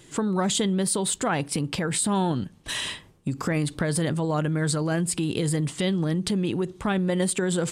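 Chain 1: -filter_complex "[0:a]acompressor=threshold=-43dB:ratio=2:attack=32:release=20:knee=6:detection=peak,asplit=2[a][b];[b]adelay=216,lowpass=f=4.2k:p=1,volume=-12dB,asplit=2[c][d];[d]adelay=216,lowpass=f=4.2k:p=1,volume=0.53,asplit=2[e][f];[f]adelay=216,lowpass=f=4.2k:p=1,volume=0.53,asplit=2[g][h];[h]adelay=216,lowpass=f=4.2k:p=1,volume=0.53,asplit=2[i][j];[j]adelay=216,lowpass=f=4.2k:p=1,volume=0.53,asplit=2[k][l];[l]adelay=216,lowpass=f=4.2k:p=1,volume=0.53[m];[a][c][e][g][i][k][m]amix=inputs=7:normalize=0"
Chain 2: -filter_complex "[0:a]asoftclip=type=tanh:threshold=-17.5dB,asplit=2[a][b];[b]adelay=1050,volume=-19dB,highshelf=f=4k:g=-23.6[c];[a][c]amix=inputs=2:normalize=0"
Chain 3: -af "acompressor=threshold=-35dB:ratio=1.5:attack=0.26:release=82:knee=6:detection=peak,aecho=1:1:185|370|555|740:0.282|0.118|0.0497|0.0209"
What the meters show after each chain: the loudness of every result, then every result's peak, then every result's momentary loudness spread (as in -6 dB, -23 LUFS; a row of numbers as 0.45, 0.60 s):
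-33.0, -27.0, -31.0 LUFS; -14.5, -17.5, -19.0 dBFS; 3, 5, 4 LU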